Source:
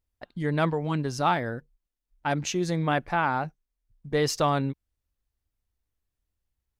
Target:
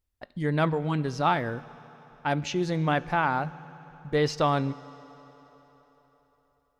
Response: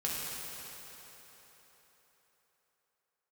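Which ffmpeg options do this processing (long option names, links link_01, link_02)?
-filter_complex "[0:a]acrossover=split=5400[link_01][link_02];[link_02]acompressor=threshold=-54dB:ratio=4:attack=1:release=60[link_03];[link_01][link_03]amix=inputs=2:normalize=0,asplit=2[link_04][link_05];[1:a]atrim=start_sample=2205,adelay=20[link_06];[link_05][link_06]afir=irnorm=-1:irlink=0,volume=-22dB[link_07];[link_04][link_07]amix=inputs=2:normalize=0"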